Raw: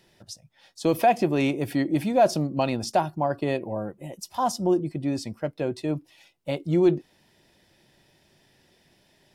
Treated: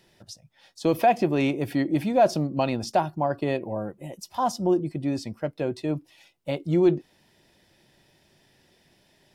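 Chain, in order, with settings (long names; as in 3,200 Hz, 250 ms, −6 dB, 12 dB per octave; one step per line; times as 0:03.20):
dynamic equaliser 9,500 Hz, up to −5 dB, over −50 dBFS, Q 0.75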